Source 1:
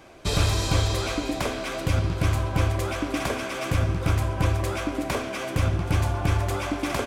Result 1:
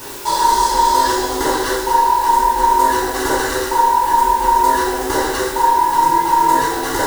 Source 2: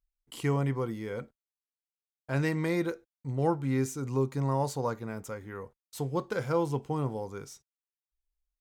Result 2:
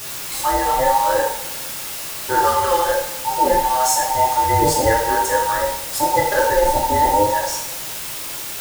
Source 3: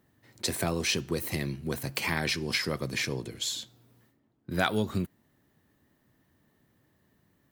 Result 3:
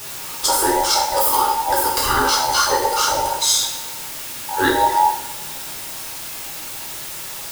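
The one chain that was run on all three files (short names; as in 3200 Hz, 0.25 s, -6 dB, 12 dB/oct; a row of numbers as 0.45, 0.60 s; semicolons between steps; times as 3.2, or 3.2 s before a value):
band inversion scrambler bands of 1000 Hz; reverse; compressor, threshold -31 dBFS; reverse; fixed phaser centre 680 Hz, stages 6; added noise white -53 dBFS; two-slope reverb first 0.63 s, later 2.2 s, from -20 dB, DRR -3.5 dB; normalise peaks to -3 dBFS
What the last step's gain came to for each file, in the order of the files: +15.5, +19.0, +17.0 dB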